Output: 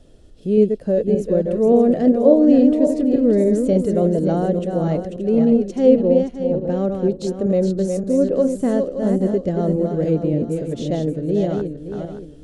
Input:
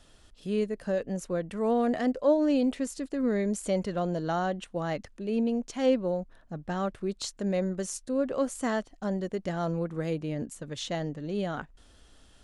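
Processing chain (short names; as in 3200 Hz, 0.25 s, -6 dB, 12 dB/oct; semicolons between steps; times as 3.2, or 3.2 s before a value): regenerating reverse delay 0.287 s, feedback 54%, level -5 dB; resonant low shelf 720 Hz +12.5 dB, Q 1.5; gain -2.5 dB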